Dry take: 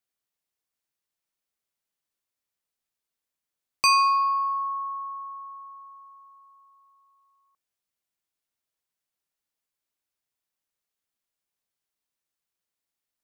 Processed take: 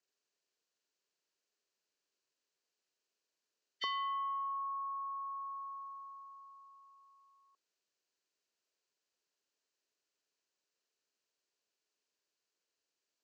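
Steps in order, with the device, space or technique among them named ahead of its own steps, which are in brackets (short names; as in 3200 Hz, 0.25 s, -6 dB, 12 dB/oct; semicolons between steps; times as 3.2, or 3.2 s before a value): hearing aid with frequency lowering (nonlinear frequency compression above 1300 Hz 1.5:1; compressor 3:1, threshold -40 dBFS, peak gain reduction 17.5 dB; speaker cabinet 310–5900 Hz, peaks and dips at 410 Hz +6 dB, 800 Hz -7 dB, 1200 Hz -5 dB, 2100 Hz -7 dB, 3500 Hz -8 dB, 5400 Hz -4 dB); gain +3.5 dB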